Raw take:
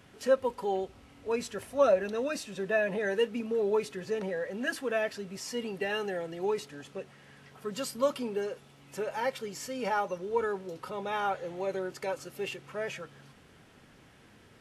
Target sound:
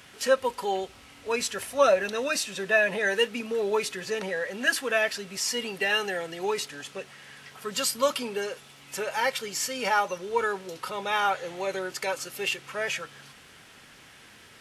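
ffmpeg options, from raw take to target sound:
ffmpeg -i in.wav -af "tiltshelf=frequency=920:gain=-7,volume=5.5dB" out.wav

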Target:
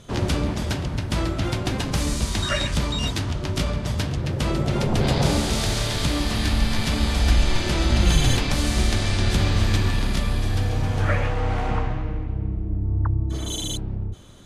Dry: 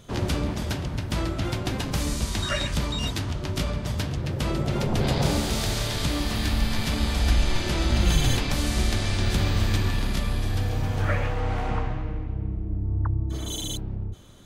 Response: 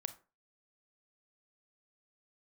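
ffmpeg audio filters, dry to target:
-af "lowpass=frequency=12000:width=0.5412,lowpass=frequency=12000:width=1.3066,volume=3dB"

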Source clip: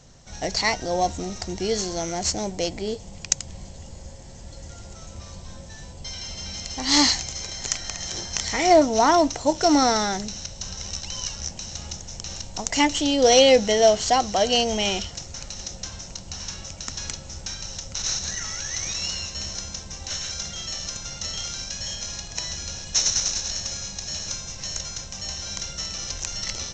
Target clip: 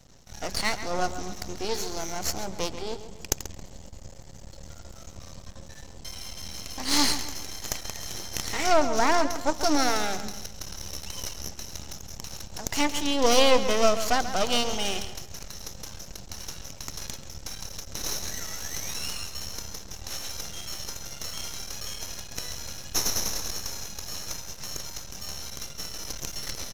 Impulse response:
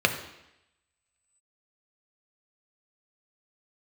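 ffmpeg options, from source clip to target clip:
-filter_complex "[0:a]asettb=1/sr,asplit=3[link_01][link_02][link_03];[link_01]atrim=end=25.504[link_04];[link_02]atrim=start=25.5:end=26.03,asetpts=PTS-STARTPTS,afade=type=in:duration=0.004:curve=qsin,afade=type=out:start_time=0.526:duration=0.004:curve=qsin,agate=range=-33dB:threshold=-30dB:ratio=3:detection=peak[link_05];[link_03]atrim=start=26.026[link_06];[link_04][link_05]acrossfade=duration=0.004:curve1=hsin:curve2=qsin[link_07];[link_07][link_06]acrossfade=duration=0.004:curve1=qsin:curve2=hsin,aeval=exprs='max(val(0),0)':channel_layout=same,asplit=2[link_08][link_09];[link_09]adelay=136,lowpass=frequency=5000:poles=1,volume=-11.5dB,asplit=2[link_10][link_11];[link_11]adelay=136,lowpass=frequency=5000:poles=1,volume=0.41,asplit=2[link_12][link_13];[link_13]adelay=136,lowpass=frequency=5000:poles=1,volume=0.41,asplit=2[link_14][link_15];[link_15]adelay=136,lowpass=frequency=5000:poles=1,volume=0.41[link_16];[link_08][link_10][link_12][link_14][link_16]amix=inputs=5:normalize=0,volume=-1dB"

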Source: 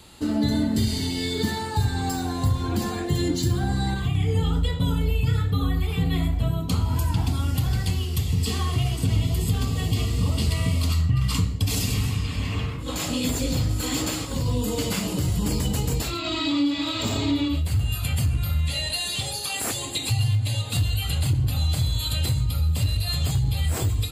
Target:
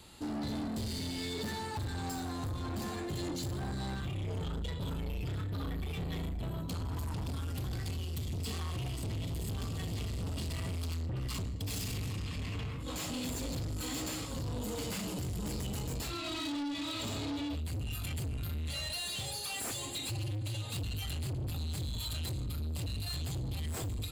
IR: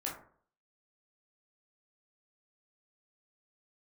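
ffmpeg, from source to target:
-af "asoftclip=type=tanh:threshold=-28dB,volume=-6dB"

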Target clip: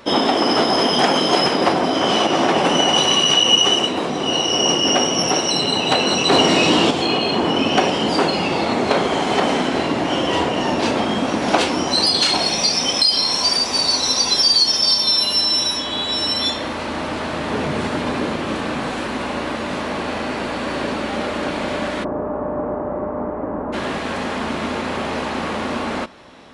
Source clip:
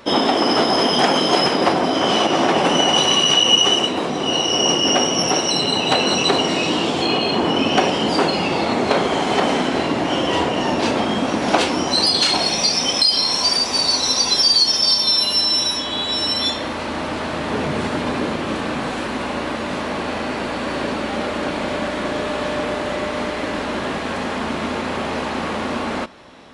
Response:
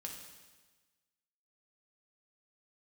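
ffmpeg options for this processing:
-filter_complex "[0:a]asettb=1/sr,asplit=3[link_01][link_02][link_03];[link_01]atrim=end=6.314[link_04];[link_02]atrim=start=6.31:end=6.91,asetpts=PTS-STARTPTS,afade=type=in:duration=0.004:curve=qsin,afade=type=out:start_time=0.596:duration=0.004:curve=qsin,acontrast=29[link_05];[link_03]atrim=start=6.906[link_06];[link_04][link_05]acrossfade=duration=0.004:curve1=hsin:curve2=qsin[link_07];[link_07][link_06]acrossfade=duration=0.004:curve1=qsin:curve2=hsin,asplit=3[link_08][link_09][link_10];[link_08]afade=type=out:start_time=22.03:duration=0.02[link_11];[link_09]lowpass=frequency=1100:width=0.5412,lowpass=frequency=1100:width=1.3066,afade=type=in:start_time=22.03:duration=0.02,afade=type=out:start_time=23.72:duration=0.02[link_12];[link_10]afade=type=in:start_time=23.72:duration=0.02[link_13];[link_11][link_12][link_13]amix=inputs=3:normalize=0"

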